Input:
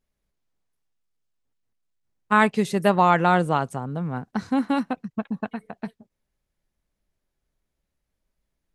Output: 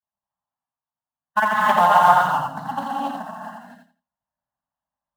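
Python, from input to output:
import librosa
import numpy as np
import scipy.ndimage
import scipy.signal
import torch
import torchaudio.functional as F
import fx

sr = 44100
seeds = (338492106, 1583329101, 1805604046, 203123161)

p1 = fx.spec_dropout(x, sr, seeds[0], share_pct=33)
p2 = fx.env_lowpass(p1, sr, base_hz=1400.0, full_db=-22.5)
p3 = fx.low_shelf_res(p2, sr, hz=530.0, db=-9.0, q=1.5)
p4 = fx.hum_notches(p3, sr, base_hz=60, count=10)
p5 = fx.stretch_vocoder(p4, sr, factor=0.59)
p6 = fx.cabinet(p5, sr, low_hz=150.0, low_slope=12, high_hz=3600.0, hz=(430.0, 690.0, 1300.0, 2900.0), db=(-8, -3, -8, 10))
p7 = fx.quant_companded(p6, sr, bits=4)
p8 = p6 + (p7 * librosa.db_to_amplitude(-10.0))
p9 = fx.fixed_phaser(p8, sr, hz=1000.0, stages=4)
p10 = fx.echo_feedback(p9, sr, ms=85, feedback_pct=22, wet_db=-4.0)
p11 = fx.rev_gated(p10, sr, seeds[1], gate_ms=300, shape='rising', drr_db=-3.5)
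p12 = fx.doppler_dist(p11, sr, depth_ms=0.12)
y = p12 * librosa.db_to_amplitude(2.5)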